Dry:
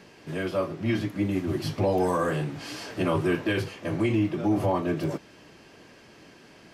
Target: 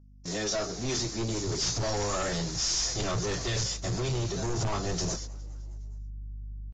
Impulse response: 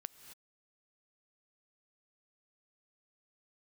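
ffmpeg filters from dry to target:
-filter_complex "[0:a]agate=range=-55dB:threshold=-41dB:ratio=16:detection=peak,asetrate=49501,aresample=44100,atempo=0.890899,aexciter=amount=13.4:drive=5.9:freq=4400,aresample=16000,asoftclip=type=hard:threshold=-24dB,aresample=44100,aeval=exprs='val(0)+0.00224*(sin(2*PI*50*n/s)+sin(2*PI*2*50*n/s)/2+sin(2*PI*3*50*n/s)/3+sin(2*PI*4*50*n/s)/4+sin(2*PI*5*50*n/s)/5)':channel_layout=same,asubboost=boost=11.5:cutoff=79,asoftclip=type=tanh:threshold=-25.5dB,asplit=2[link_01][link_02];[link_02]asplit=4[link_03][link_04][link_05][link_06];[link_03]adelay=206,afreqshift=62,volume=-24dB[link_07];[link_04]adelay=412,afreqshift=124,volume=-28.4dB[link_08];[link_05]adelay=618,afreqshift=186,volume=-32.9dB[link_09];[link_06]adelay=824,afreqshift=248,volume=-37.3dB[link_10];[link_07][link_08][link_09][link_10]amix=inputs=4:normalize=0[link_11];[link_01][link_11]amix=inputs=2:normalize=0" -ar 16000 -c:a libvorbis -b:a 32k

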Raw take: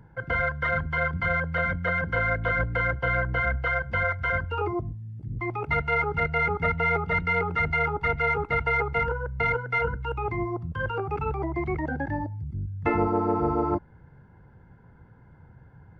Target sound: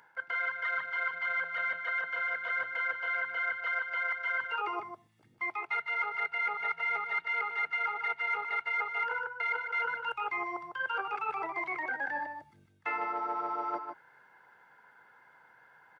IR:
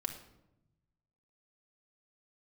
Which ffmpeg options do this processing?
-filter_complex "[0:a]highpass=1200,areverse,acompressor=threshold=-39dB:ratio=4,areverse,asplit=2[link_01][link_02];[link_02]adelay=151.6,volume=-7dB,highshelf=frequency=4000:gain=-3.41[link_03];[link_01][link_03]amix=inputs=2:normalize=0,volume=7dB"

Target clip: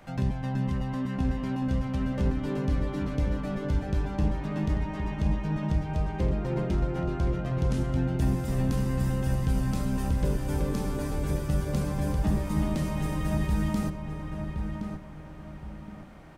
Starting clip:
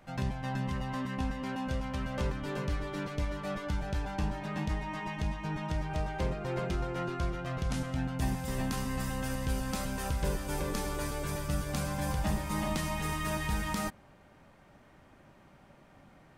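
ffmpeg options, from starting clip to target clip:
ffmpeg -i in.wav -filter_complex "[0:a]acrossover=split=490[link_01][link_02];[link_02]acompressor=threshold=-55dB:ratio=2[link_03];[link_01][link_03]amix=inputs=2:normalize=0,asplit=2[link_04][link_05];[link_05]adelay=1069,lowpass=frequency=2100:poles=1,volume=-5.5dB,asplit=2[link_06][link_07];[link_07]adelay=1069,lowpass=frequency=2100:poles=1,volume=0.36,asplit=2[link_08][link_09];[link_09]adelay=1069,lowpass=frequency=2100:poles=1,volume=0.36,asplit=2[link_10][link_11];[link_11]adelay=1069,lowpass=frequency=2100:poles=1,volume=0.36[link_12];[link_04][link_06][link_08][link_10][link_12]amix=inputs=5:normalize=0,volume=6dB" out.wav

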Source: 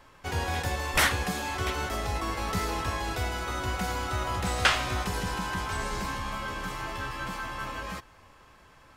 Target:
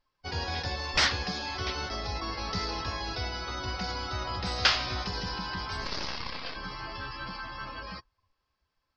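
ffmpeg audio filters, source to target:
ffmpeg -i in.wav -filter_complex "[0:a]asettb=1/sr,asplit=3[link_01][link_02][link_03];[link_01]atrim=end=5.854[link_04];[link_02]atrim=start=5.85:end=6.56,asetpts=PTS-STARTPTS,afade=type=in:duration=0.004:curve=qsin,afade=type=out:start_time=0.706:duration=0.004:curve=qsin,aeval=exprs='0.0794*(cos(1*acos(clip(val(0)/0.0794,-1,1)))-cos(1*PI/2))+0.0251*(cos(3*acos(clip(val(0)/0.0794,-1,1)))-cos(3*PI/2))+0.0316*(cos(4*acos(clip(val(0)/0.0794,-1,1)))-cos(4*PI/2))':channel_layout=same[link_05];[link_03]atrim=start=6.556[link_06];[link_04][link_05]acrossfade=duration=0.004:curve1=hsin:curve2=qsin[link_07];[link_07][link_06]acrossfade=duration=0.004:curve1=qsin:curve2=hsin,lowpass=frequency=4900:width_type=q:width=4.4,afftdn=noise_reduction=24:noise_floor=-39,volume=-4dB" out.wav

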